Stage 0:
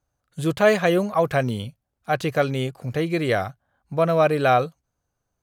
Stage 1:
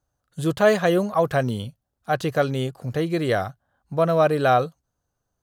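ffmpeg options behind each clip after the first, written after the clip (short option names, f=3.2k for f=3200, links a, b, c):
-af "equalizer=f=2.3k:t=o:w=0.35:g=-7.5"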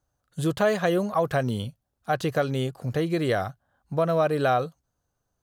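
-af "acompressor=threshold=-22dB:ratio=2"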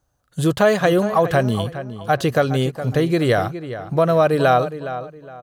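-filter_complex "[0:a]asplit=2[a][b];[b]adelay=414,lowpass=f=3.1k:p=1,volume=-12dB,asplit=2[c][d];[d]adelay=414,lowpass=f=3.1k:p=1,volume=0.3,asplit=2[e][f];[f]adelay=414,lowpass=f=3.1k:p=1,volume=0.3[g];[a][c][e][g]amix=inputs=4:normalize=0,volume=7dB"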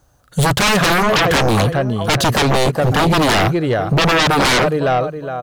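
-af "aeval=exprs='0.631*sin(PI/2*6.31*val(0)/0.631)':c=same,volume=-6.5dB"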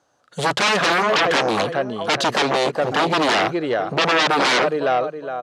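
-af "highpass=300,lowpass=6k,volume=-2.5dB"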